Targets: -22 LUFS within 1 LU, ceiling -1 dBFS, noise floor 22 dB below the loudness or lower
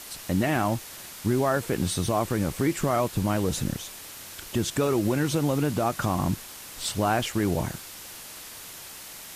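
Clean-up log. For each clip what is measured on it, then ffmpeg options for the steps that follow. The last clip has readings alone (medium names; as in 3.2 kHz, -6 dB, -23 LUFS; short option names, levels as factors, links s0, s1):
noise floor -43 dBFS; noise floor target -49 dBFS; loudness -26.5 LUFS; peak level -11.5 dBFS; loudness target -22.0 LUFS
-> -af "afftdn=nr=6:nf=-43"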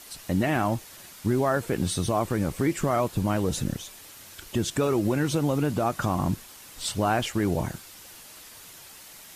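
noise floor -47 dBFS; noise floor target -49 dBFS
-> -af "afftdn=nr=6:nf=-47"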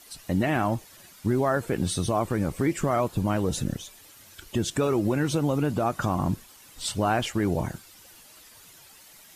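noise floor -52 dBFS; loudness -27.0 LUFS; peak level -12.0 dBFS; loudness target -22.0 LUFS
-> -af "volume=1.78"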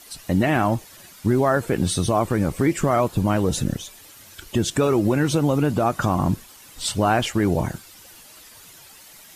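loudness -22.0 LUFS; peak level -7.0 dBFS; noise floor -47 dBFS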